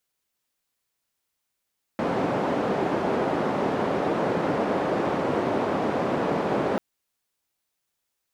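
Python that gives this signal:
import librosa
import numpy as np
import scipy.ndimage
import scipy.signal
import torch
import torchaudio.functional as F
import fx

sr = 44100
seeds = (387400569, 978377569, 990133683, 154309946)

y = fx.band_noise(sr, seeds[0], length_s=4.79, low_hz=190.0, high_hz=600.0, level_db=-25.0)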